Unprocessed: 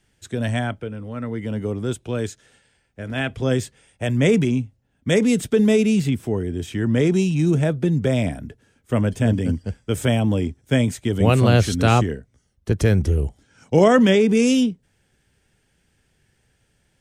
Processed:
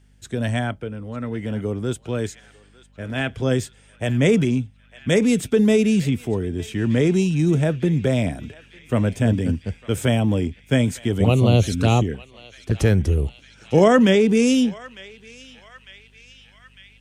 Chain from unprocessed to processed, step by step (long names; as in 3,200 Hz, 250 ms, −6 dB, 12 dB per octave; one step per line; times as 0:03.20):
mains hum 50 Hz, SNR 34 dB
0:11.24–0:12.75: flanger swept by the level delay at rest 3 ms, full sweep at −12.5 dBFS
feedback echo with a band-pass in the loop 902 ms, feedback 73%, band-pass 2,700 Hz, level −15.5 dB